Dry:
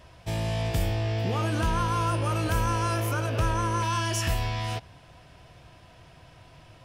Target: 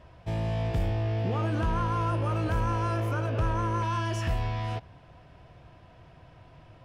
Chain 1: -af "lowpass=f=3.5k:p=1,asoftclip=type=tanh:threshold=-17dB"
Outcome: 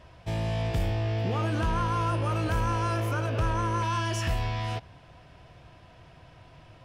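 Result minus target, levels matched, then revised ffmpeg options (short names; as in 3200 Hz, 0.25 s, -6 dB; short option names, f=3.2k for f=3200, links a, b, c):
4000 Hz band +4.5 dB
-af "lowpass=f=1.5k:p=1,asoftclip=type=tanh:threshold=-17dB"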